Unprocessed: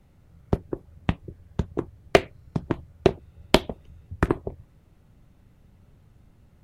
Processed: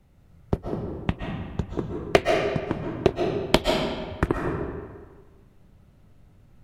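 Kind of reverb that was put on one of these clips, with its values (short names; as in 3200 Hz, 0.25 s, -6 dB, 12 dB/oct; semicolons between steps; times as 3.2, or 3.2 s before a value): digital reverb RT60 1.5 s, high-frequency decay 0.75×, pre-delay 95 ms, DRR 0.5 dB; gain -1.5 dB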